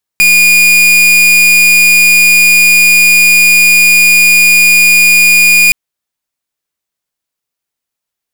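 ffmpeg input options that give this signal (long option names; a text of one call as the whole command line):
ffmpeg -f lavfi -i "aevalsrc='0.531*(2*lt(mod(2440*t,1),0.42)-1)':duration=5.52:sample_rate=44100" out.wav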